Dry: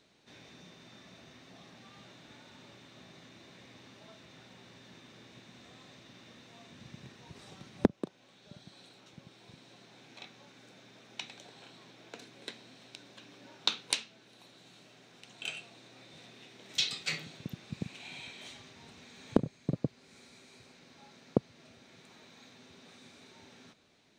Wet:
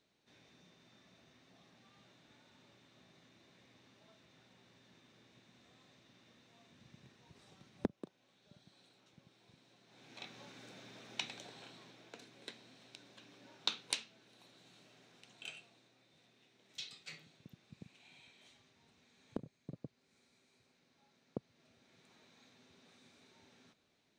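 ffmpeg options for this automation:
-af "volume=8dB,afade=t=in:st=9.85:d=0.55:silence=0.237137,afade=t=out:st=11.25:d=0.86:silence=0.421697,afade=t=out:st=15.05:d=0.93:silence=0.316228,afade=t=in:st=21.28:d=0.85:silence=0.473151"

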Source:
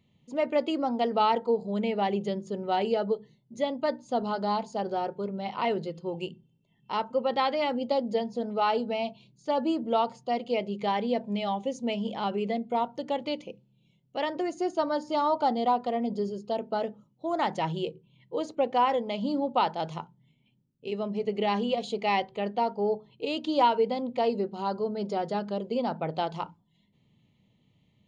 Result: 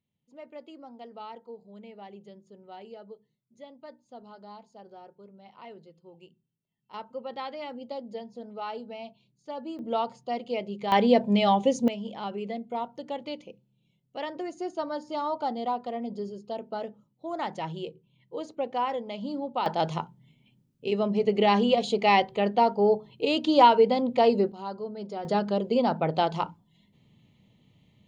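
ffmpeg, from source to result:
-af "asetnsamples=n=441:p=0,asendcmd='6.94 volume volume -10dB;9.79 volume volume -2.5dB;10.92 volume volume 8dB;11.88 volume volume -4.5dB;19.66 volume volume 5.5dB;24.52 volume volume -5.5dB;25.25 volume volume 5dB',volume=-18dB"

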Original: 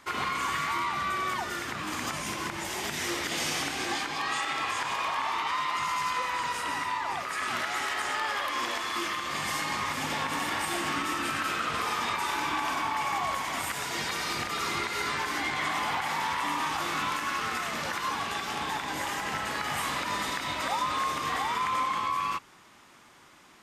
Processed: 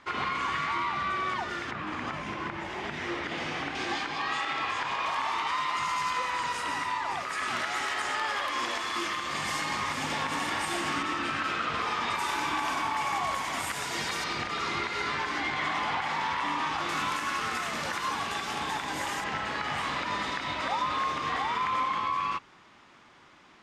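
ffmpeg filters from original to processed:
-af "asetnsamples=n=441:p=0,asendcmd='1.71 lowpass f 2500;3.75 lowpass f 4500;5.06 lowpass f 9000;11.03 lowpass f 4800;12.1 lowpass f 11000;14.24 lowpass f 4800;16.89 lowpass f 11000;19.24 lowpass f 4600',lowpass=4.2k"

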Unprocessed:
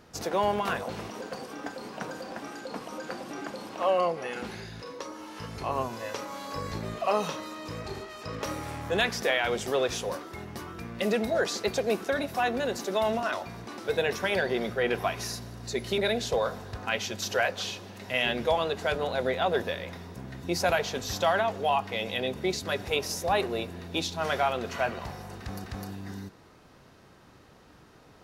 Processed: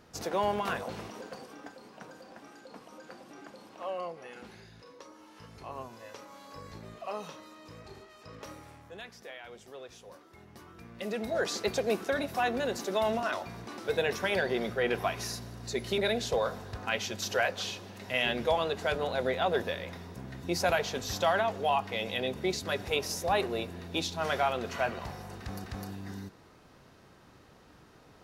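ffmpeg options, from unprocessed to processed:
-af "volume=14.5dB,afade=t=out:st=0.86:d=0.96:silence=0.375837,afade=t=out:st=8.46:d=0.5:silence=0.398107,afade=t=in:st=10:d=1.12:silence=0.281838,afade=t=in:st=11.12:d=0.41:silence=0.473151"

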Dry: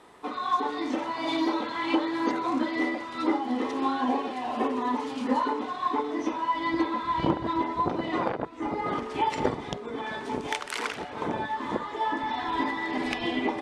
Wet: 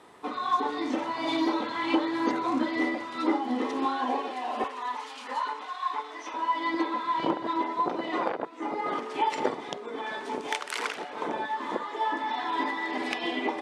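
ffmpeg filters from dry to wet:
-af "asetnsamples=n=441:p=0,asendcmd='3.08 highpass f 160;3.85 highpass f 360;4.64 highpass f 950;6.34 highpass f 310',highpass=70"

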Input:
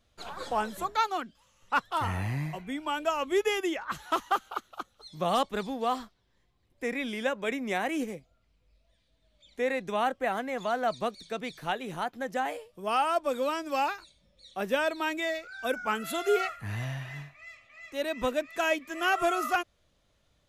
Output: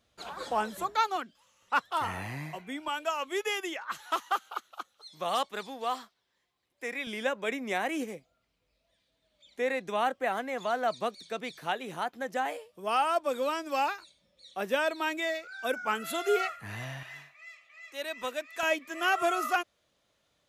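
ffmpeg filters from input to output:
-af "asetnsamples=n=441:p=0,asendcmd='1.16 highpass f 330;2.88 highpass f 800;7.07 highpass f 260;17.03 highpass f 1100;18.63 highpass f 310',highpass=f=130:p=1"

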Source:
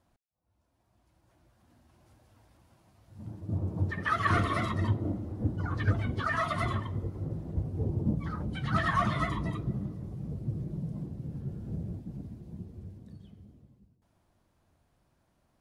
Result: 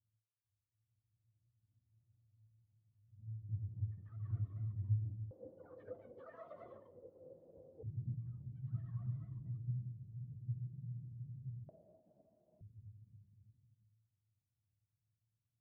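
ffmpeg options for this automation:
-af "asetnsamples=n=441:p=0,asendcmd='5.31 bandpass f 520;7.83 bandpass f 120;11.69 bandpass f 630;12.61 bandpass f 110',bandpass=f=110:t=q:w=15:csg=0"

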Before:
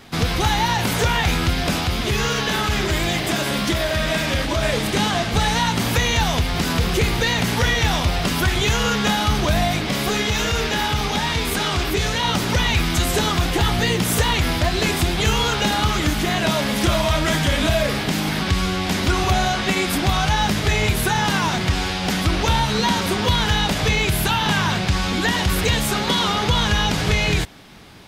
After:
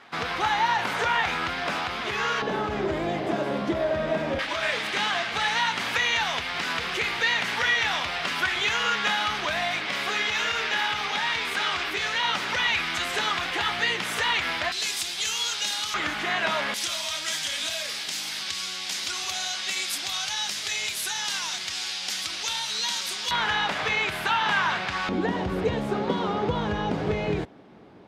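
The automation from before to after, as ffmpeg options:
-af "asetnsamples=n=441:p=0,asendcmd='2.42 bandpass f 510;4.39 bandpass f 1900;14.72 bandpass f 6000;15.94 bandpass f 1600;16.74 bandpass f 5900;23.31 bandpass f 1400;25.09 bandpass f 410',bandpass=f=1.3k:t=q:w=0.92:csg=0"

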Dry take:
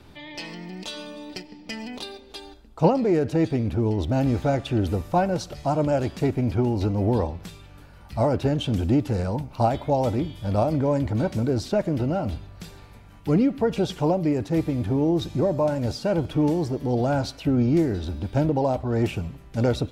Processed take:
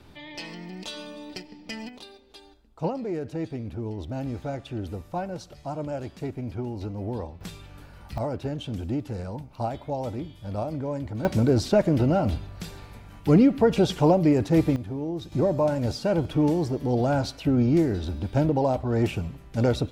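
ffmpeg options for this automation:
-af "asetnsamples=n=441:p=0,asendcmd='1.89 volume volume -9.5dB;7.41 volume volume 1dB;8.18 volume volume -8dB;11.25 volume volume 3dB;14.76 volume volume -9dB;15.32 volume volume -0.5dB',volume=-2dB"

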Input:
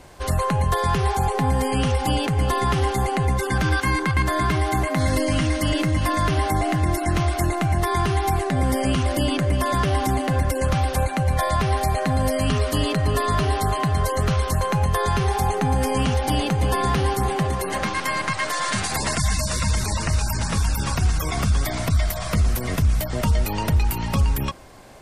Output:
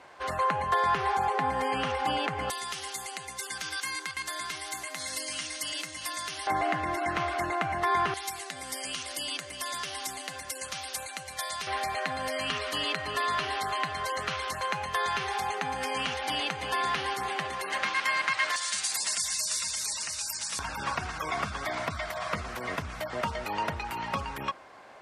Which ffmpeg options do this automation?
-af "asetnsamples=n=441:p=0,asendcmd='2.5 bandpass f 6800;6.47 bandpass f 1400;8.14 bandpass f 6000;11.67 bandpass f 2400;18.56 bandpass f 7000;20.59 bandpass f 1300',bandpass=f=1.4k:t=q:w=0.77:csg=0"

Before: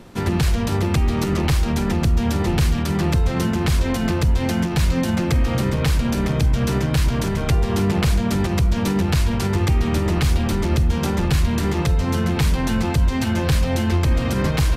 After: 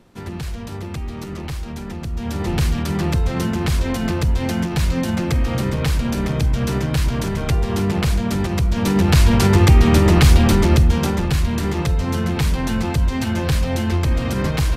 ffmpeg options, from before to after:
-af "volume=7dB,afade=t=in:st=2.09:d=0.51:silence=0.354813,afade=t=in:st=8.7:d=0.64:silence=0.421697,afade=t=out:st=10.49:d=0.75:silence=0.421697"

